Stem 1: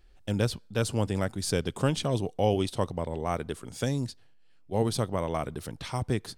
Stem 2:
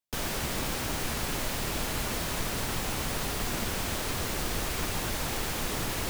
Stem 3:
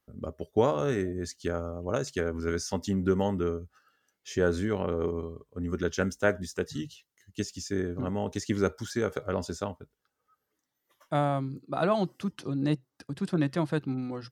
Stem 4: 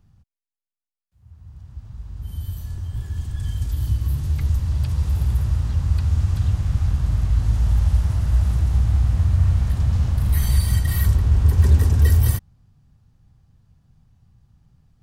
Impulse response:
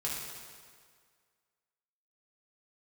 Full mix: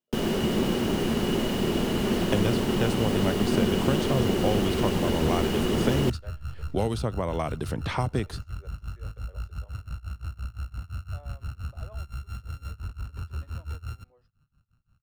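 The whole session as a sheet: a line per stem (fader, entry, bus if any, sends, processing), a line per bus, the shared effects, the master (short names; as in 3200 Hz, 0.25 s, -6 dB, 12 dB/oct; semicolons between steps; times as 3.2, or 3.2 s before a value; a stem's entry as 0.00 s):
0.0 dB, 2.05 s, no send, three-band squash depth 100%
-0.5 dB, 0.00 s, no send, small resonant body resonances 220/360/2900 Hz, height 16 dB, ringing for 35 ms
-19.0 dB, 0.00 s, no send, ladder high-pass 420 Hz, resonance 45%
-9.0 dB, 1.65 s, no send, sample sorter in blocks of 32 samples; limiter -17 dBFS, peak gain reduction 11.5 dB; tremolo 5.8 Hz, depth 94%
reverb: off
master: high shelf 4700 Hz -7.5 dB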